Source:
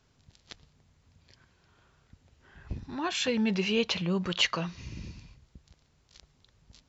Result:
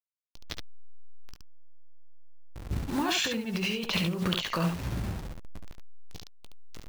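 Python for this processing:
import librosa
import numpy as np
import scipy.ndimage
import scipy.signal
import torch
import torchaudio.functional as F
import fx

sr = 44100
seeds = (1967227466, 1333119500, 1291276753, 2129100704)

y = fx.delta_hold(x, sr, step_db=-41.5)
y = fx.over_compress(y, sr, threshold_db=-34.0, ratio=-1.0)
y = fx.room_early_taps(y, sr, ms=(18, 71), db=(-13.0, -5.0))
y = y * 10.0 ** (3.5 / 20.0)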